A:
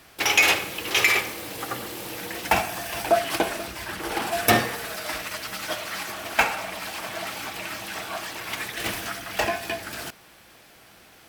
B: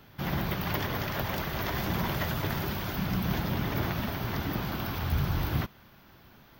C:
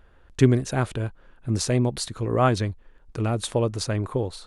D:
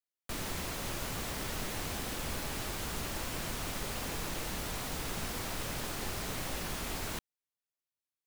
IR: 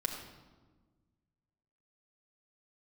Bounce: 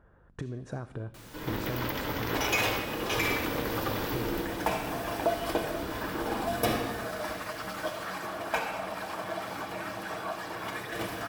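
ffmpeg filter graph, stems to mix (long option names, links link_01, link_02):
-filter_complex "[0:a]adelay=2150,volume=1.5dB,asplit=2[link_01][link_02];[link_02]volume=-14.5dB[link_03];[1:a]acompressor=threshold=-31dB:ratio=6,aeval=exprs='val(0)*sin(2*PI*160*n/s)':channel_layout=same,adelay=1150,volume=1.5dB,asplit=2[link_04][link_05];[link_05]volume=-5dB[link_06];[2:a]alimiter=limit=-14dB:level=0:latency=1:release=225,acompressor=threshold=-29dB:ratio=6,aeval=exprs='val(0)+0.00112*(sin(2*PI*50*n/s)+sin(2*PI*2*50*n/s)/2+sin(2*PI*3*50*n/s)/3+sin(2*PI*4*50*n/s)/4+sin(2*PI*5*50*n/s)/5)':channel_layout=same,volume=-2dB,asplit=3[link_07][link_08][link_09];[link_08]volume=-18.5dB[link_10];[3:a]adelay=850,volume=-12.5dB[link_11];[link_09]apad=whole_len=341752[link_12];[link_04][link_12]sidechaingate=range=-33dB:threshold=-43dB:ratio=16:detection=peak[link_13];[link_01][link_07]amix=inputs=2:normalize=0,lowpass=frequency=1800:width=0.5412,lowpass=frequency=1800:width=1.3066,acompressor=threshold=-34dB:ratio=2.5,volume=0dB[link_14];[4:a]atrim=start_sample=2205[link_15];[link_03][link_06][link_10]amix=inputs=3:normalize=0[link_16];[link_16][link_15]afir=irnorm=-1:irlink=0[link_17];[link_13][link_11][link_14][link_17]amix=inputs=4:normalize=0,highpass=frequency=78:poles=1"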